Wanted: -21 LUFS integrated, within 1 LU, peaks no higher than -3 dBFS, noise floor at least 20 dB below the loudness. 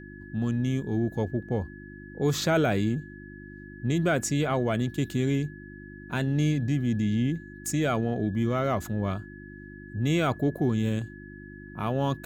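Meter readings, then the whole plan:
hum 50 Hz; harmonics up to 350 Hz; hum level -44 dBFS; steady tone 1700 Hz; tone level -48 dBFS; loudness -28.0 LUFS; peak -12.0 dBFS; loudness target -21.0 LUFS
-> de-hum 50 Hz, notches 7; notch 1700 Hz, Q 30; gain +7 dB

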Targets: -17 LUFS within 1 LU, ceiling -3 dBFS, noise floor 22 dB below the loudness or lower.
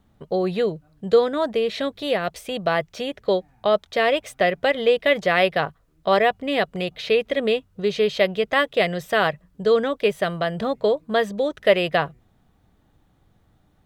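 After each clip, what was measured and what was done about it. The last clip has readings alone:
loudness -22.0 LUFS; peak -4.0 dBFS; loudness target -17.0 LUFS
-> gain +5 dB; limiter -3 dBFS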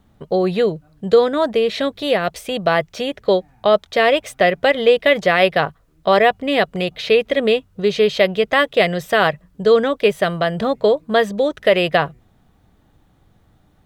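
loudness -17.5 LUFS; peak -3.0 dBFS; noise floor -57 dBFS

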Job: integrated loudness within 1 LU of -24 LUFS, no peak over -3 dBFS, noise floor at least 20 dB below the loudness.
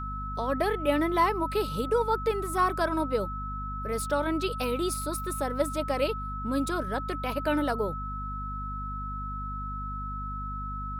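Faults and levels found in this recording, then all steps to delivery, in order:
hum 50 Hz; harmonics up to 250 Hz; hum level -34 dBFS; steady tone 1300 Hz; tone level -35 dBFS; loudness -30.0 LUFS; peak -12.0 dBFS; loudness target -24.0 LUFS
-> notches 50/100/150/200/250 Hz; notch 1300 Hz, Q 30; gain +6 dB

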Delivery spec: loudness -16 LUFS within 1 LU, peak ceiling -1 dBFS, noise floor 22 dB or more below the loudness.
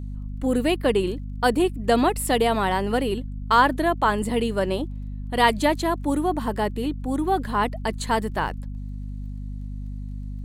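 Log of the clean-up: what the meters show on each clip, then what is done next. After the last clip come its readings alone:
ticks 22/s; hum 50 Hz; harmonics up to 250 Hz; hum level -30 dBFS; loudness -23.5 LUFS; peak -5.0 dBFS; loudness target -16.0 LUFS
-> de-click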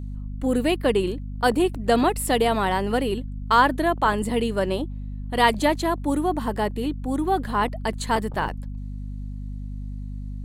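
ticks 0.86/s; hum 50 Hz; harmonics up to 250 Hz; hum level -30 dBFS
-> de-hum 50 Hz, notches 5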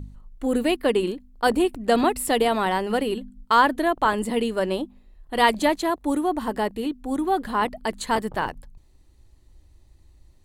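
hum none; loudness -23.5 LUFS; peak -5.0 dBFS; loudness target -16.0 LUFS
-> gain +7.5 dB; limiter -1 dBFS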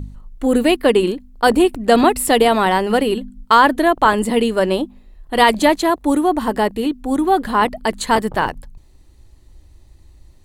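loudness -16.5 LUFS; peak -1.0 dBFS; noise floor -48 dBFS

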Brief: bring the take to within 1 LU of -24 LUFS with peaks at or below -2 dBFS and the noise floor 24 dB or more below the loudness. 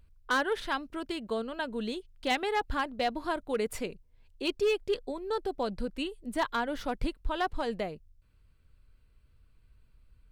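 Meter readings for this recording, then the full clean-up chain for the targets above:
clipped 0.5%; flat tops at -21.5 dBFS; loudness -33.0 LUFS; peak -21.5 dBFS; loudness target -24.0 LUFS
-> clip repair -21.5 dBFS; gain +9 dB

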